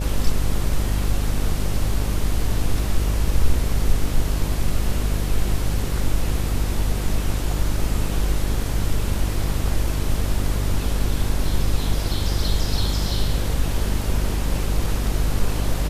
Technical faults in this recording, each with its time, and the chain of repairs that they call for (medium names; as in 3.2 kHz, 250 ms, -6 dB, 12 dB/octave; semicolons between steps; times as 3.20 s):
buzz 50 Hz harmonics 12 -24 dBFS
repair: de-hum 50 Hz, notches 12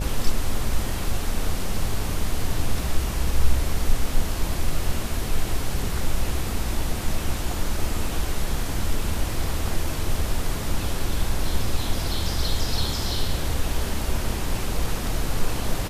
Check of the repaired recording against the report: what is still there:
nothing left